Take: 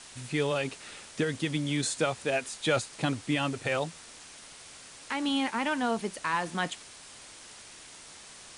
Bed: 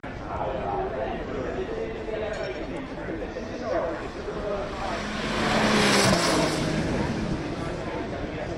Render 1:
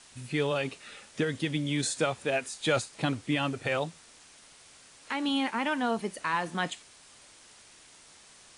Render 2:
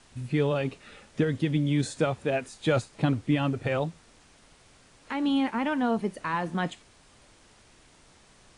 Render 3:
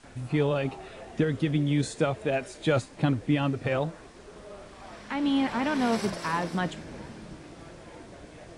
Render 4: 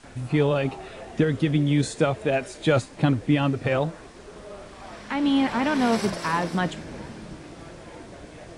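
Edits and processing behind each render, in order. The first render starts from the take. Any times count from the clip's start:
noise reduction from a noise print 6 dB
spectral tilt −2.5 dB per octave
mix in bed −15.5 dB
level +4 dB

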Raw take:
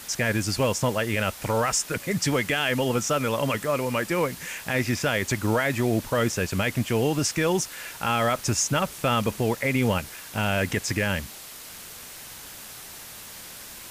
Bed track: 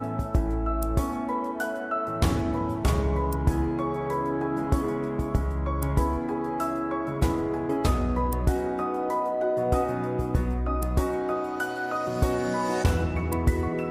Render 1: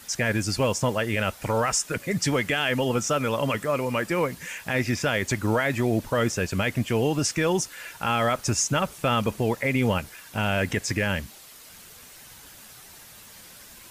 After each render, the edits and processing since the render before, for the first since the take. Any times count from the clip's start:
broadband denoise 7 dB, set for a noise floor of −42 dBFS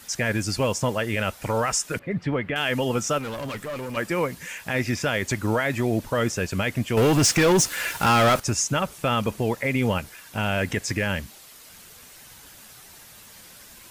0:01.99–0:02.56: high-frequency loss of the air 480 metres
0:03.18–0:03.97: tube saturation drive 28 dB, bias 0.45
0:06.97–0:08.40: leveller curve on the samples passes 3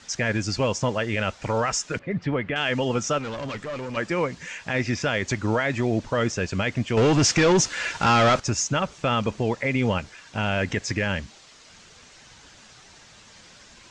Butterworth low-pass 7,100 Hz 36 dB per octave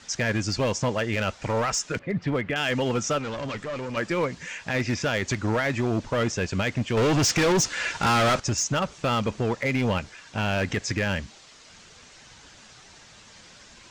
gain into a clipping stage and back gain 19 dB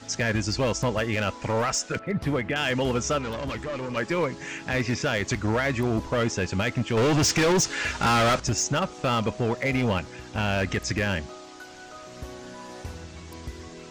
mix in bed track −15 dB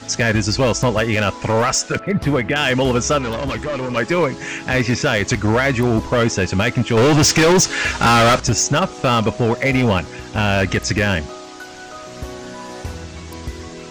level +8.5 dB

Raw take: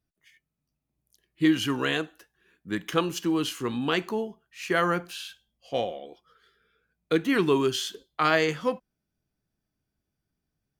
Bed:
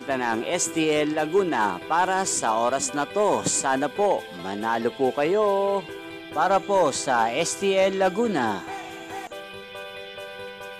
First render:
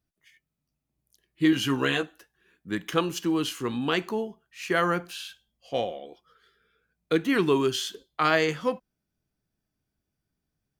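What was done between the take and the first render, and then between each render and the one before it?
0:01.51–0:02.03: double-tracking delay 15 ms −6 dB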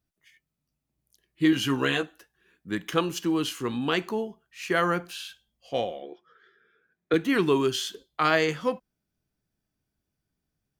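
0:06.02–0:07.14: loudspeaker in its box 150–5,400 Hz, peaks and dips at 360 Hz +9 dB, 1,700 Hz +9 dB, 2,800 Hz −4 dB, 4,500 Hz −10 dB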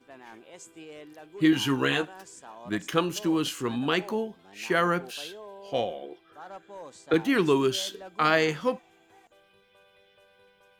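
mix in bed −23 dB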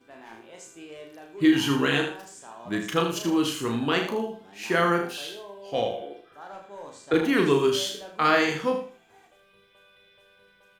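double-tracking delay 35 ms −4.5 dB
repeating echo 78 ms, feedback 25%, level −8 dB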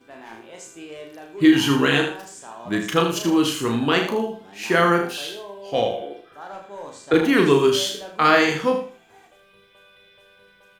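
level +5 dB

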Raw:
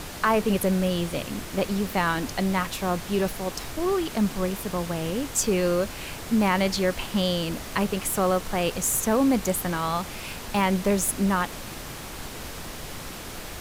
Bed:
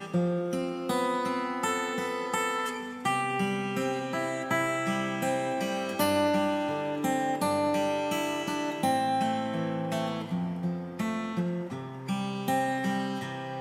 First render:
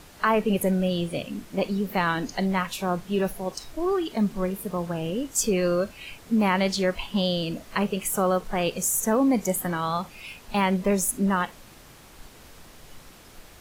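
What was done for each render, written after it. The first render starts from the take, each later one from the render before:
noise reduction from a noise print 12 dB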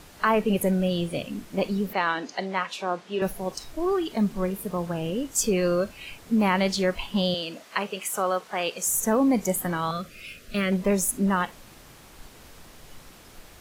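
0:01.93–0:03.22: band-pass filter 340–5,700 Hz
0:07.34–0:08.87: meter weighting curve A
0:09.91–0:10.72: Chebyshev band-stop filter 610–1,300 Hz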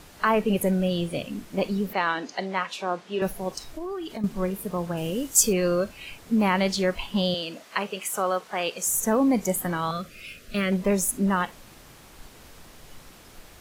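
0:03.70–0:04.24: downward compressor 4 to 1, threshold −31 dBFS
0:04.97–0:05.53: high-shelf EQ 6,100 Hz +10.5 dB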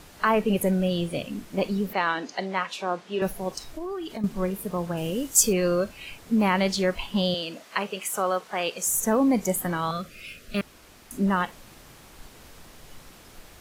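0:10.61–0:11.11: fill with room tone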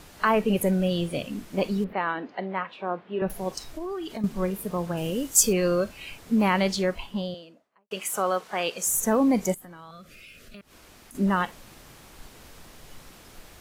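0:01.84–0:03.30: high-frequency loss of the air 480 metres
0:06.56–0:07.91: fade out and dull
0:09.54–0:11.15: downward compressor 4 to 1, threshold −45 dBFS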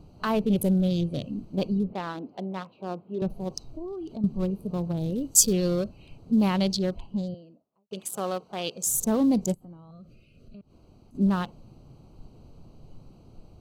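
adaptive Wiener filter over 25 samples
graphic EQ with 10 bands 125 Hz +6 dB, 500 Hz −3 dB, 1,000 Hz −4 dB, 2,000 Hz −11 dB, 4,000 Hz +7 dB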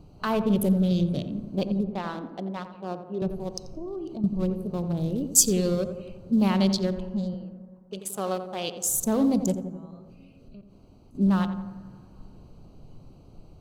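feedback echo with a low-pass in the loop 87 ms, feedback 60%, low-pass 1,400 Hz, level −8.5 dB
dense smooth reverb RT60 3 s, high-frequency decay 0.3×, DRR 19.5 dB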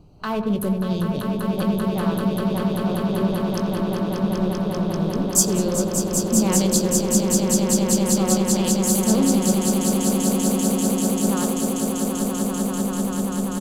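double-tracking delay 19 ms −11.5 dB
echo that builds up and dies away 195 ms, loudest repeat 8, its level −6 dB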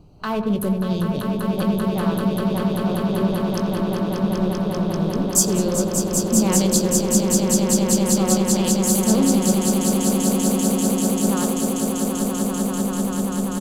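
level +1 dB
brickwall limiter −3 dBFS, peak gain reduction 1.5 dB

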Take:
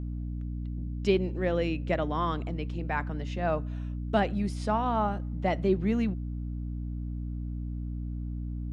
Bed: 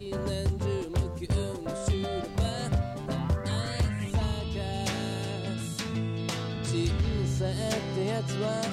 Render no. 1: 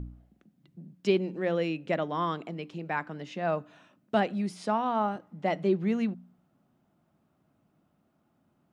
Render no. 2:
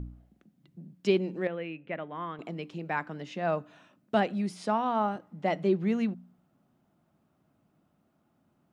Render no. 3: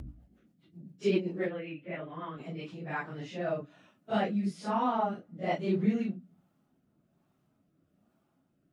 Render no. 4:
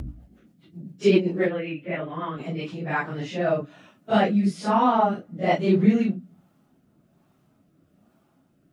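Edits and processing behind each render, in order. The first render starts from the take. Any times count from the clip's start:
hum removal 60 Hz, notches 5
0:01.47–0:02.39: transistor ladder low-pass 2,900 Hz, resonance 40%
random phases in long frames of 100 ms; rotating-speaker cabinet horn 7.5 Hz, later 1.2 Hz, at 0:02.03
level +9.5 dB

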